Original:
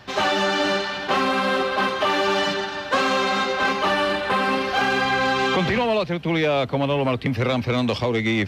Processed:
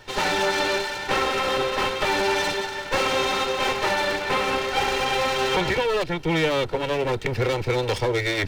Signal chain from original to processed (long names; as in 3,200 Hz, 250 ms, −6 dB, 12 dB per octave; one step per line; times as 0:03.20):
lower of the sound and its delayed copy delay 2.2 ms
notch filter 1,200 Hz, Q 16